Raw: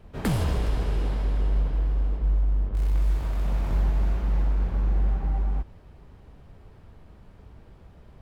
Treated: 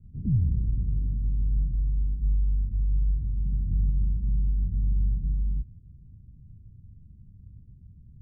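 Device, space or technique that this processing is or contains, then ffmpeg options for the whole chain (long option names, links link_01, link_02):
the neighbour's flat through the wall: -af "lowpass=frequency=220:width=0.5412,lowpass=frequency=220:width=1.3066,equalizer=frequency=110:width_type=o:width=0.97:gain=7.5,volume=-2.5dB"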